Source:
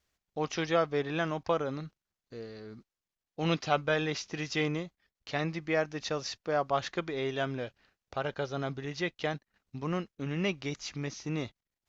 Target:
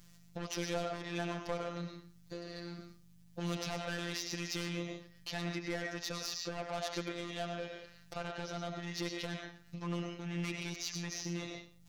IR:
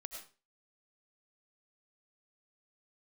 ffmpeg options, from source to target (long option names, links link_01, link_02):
-filter_complex "[0:a]asplit=2[link_01][link_02];[1:a]atrim=start_sample=2205,highshelf=frequency=3000:gain=11.5[link_03];[link_02][link_03]afir=irnorm=-1:irlink=0,volume=5.5dB[link_04];[link_01][link_04]amix=inputs=2:normalize=0,asoftclip=type=hard:threshold=-22dB,aeval=exprs='val(0)+0.000891*(sin(2*PI*50*n/s)+sin(2*PI*2*50*n/s)/2+sin(2*PI*3*50*n/s)/3+sin(2*PI*4*50*n/s)/4+sin(2*PI*5*50*n/s)/5)':channel_layout=same,acompressor=threshold=-46dB:ratio=2.5,asoftclip=type=tanh:threshold=-38dB,afftfilt=real='hypot(re,im)*cos(PI*b)':imag='0':win_size=1024:overlap=0.75,volume=7.5dB"